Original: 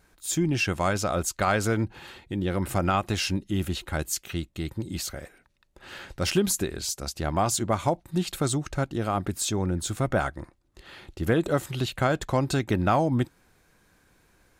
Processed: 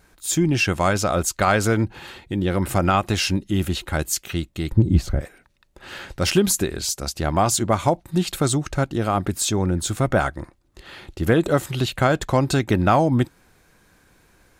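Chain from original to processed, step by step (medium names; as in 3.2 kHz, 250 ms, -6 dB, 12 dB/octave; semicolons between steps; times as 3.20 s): 4.72–5.21 s: tilt EQ -4 dB/octave; trim +5.5 dB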